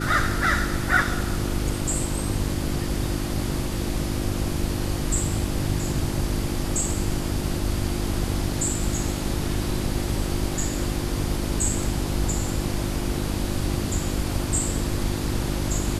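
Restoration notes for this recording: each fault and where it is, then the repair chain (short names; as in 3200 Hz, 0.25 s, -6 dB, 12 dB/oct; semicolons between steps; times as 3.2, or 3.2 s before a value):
hum 50 Hz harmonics 7 -30 dBFS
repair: de-hum 50 Hz, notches 7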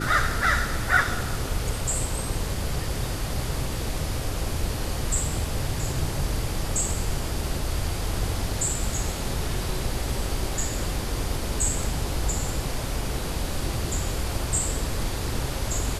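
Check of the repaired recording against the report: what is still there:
none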